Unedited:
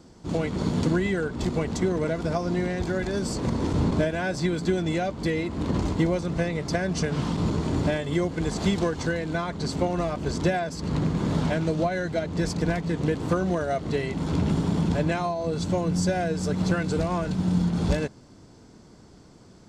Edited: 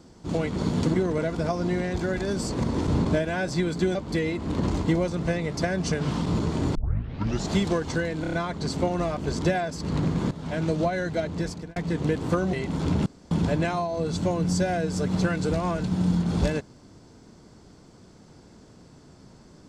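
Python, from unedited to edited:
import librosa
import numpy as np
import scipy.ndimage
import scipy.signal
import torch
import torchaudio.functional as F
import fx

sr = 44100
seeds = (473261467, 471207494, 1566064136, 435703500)

y = fx.edit(x, sr, fx.cut(start_s=0.94, length_s=0.86),
    fx.cut(start_s=4.81, length_s=0.25),
    fx.tape_start(start_s=7.86, length_s=0.75),
    fx.stutter(start_s=9.32, slice_s=0.03, count=5),
    fx.fade_in_from(start_s=11.3, length_s=0.31, curve='qua', floor_db=-15.5),
    fx.fade_out_span(start_s=12.27, length_s=0.48),
    fx.cut(start_s=13.52, length_s=0.48),
    fx.room_tone_fill(start_s=14.53, length_s=0.25), tone=tone)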